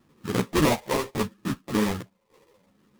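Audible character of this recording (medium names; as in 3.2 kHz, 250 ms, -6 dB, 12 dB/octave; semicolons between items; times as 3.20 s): phasing stages 12, 0.73 Hz, lowest notch 230–1100 Hz; tremolo saw down 0.87 Hz, depth 80%; aliases and images of a low sample rate 1.5 kHz, jitter 20%; a shimmering, thickened sound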